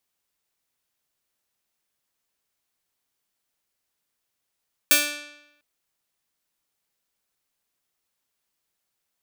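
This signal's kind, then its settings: plucked string D4, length 0.70 s, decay 0.90 s, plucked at 0.29, bright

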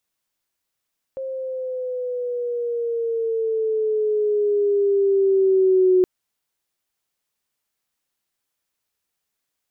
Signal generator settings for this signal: gliding synth tone sine, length 4.87 s, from 533 Hz, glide -6.5 st, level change +14 dB, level -12 dB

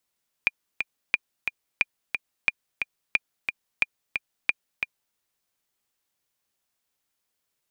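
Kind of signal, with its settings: metronome 179 bpm, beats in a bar 2, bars 7, 2.41 kHz, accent 6 dB -6.5 dBFS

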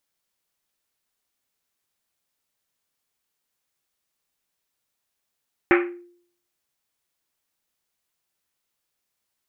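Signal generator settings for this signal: Risset drum, pitch 350 Hz, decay 0.60 s, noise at 1.8 kHz, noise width 1.3 kHz, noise 35%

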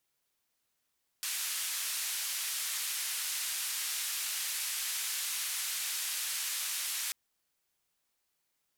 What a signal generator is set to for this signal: noise band 1.7–13 kHz, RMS -35.5 dBFS 5.89 s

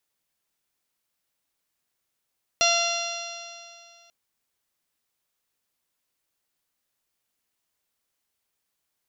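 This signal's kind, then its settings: stretched partials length 1.49 s, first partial 681 Hz, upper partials -5/-10.5/0.5/-4/-1/-11/0.5/-17/-19 dB, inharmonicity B 0.0015, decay 2.36 s, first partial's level -23 dB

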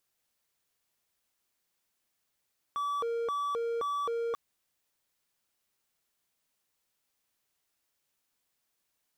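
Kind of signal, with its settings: siren hi-lo 465–1150 Hz 1.9 per s triangle -27.5 dBFS 1.59 s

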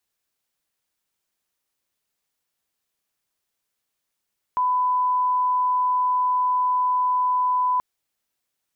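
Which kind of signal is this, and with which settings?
line-up tone -18 dBFS 3.23 s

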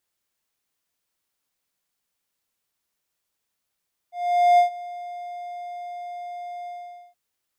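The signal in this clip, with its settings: ADSR triangle 706 Hz, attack 462 ms, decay 113 ms, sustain -20.5 dB, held 2.55 s, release 473 ms -9.5 dBFS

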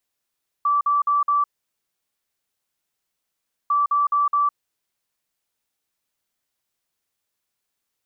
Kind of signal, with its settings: beep pattern sine 1.16 kHz, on 0.16 s, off 0.05 s, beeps 4, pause 2.26 s, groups 2, -16 dBFS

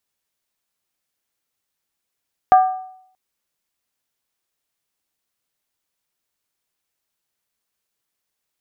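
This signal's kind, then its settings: skin hit length 0.63 s, lowest mode 749 Hz, decay 0.68 s, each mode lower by 11 dB, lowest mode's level -5 dB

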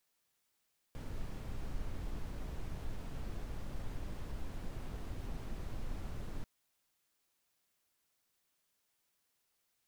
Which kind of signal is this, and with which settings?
noise brown, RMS -39.5 dBFS 5.49 s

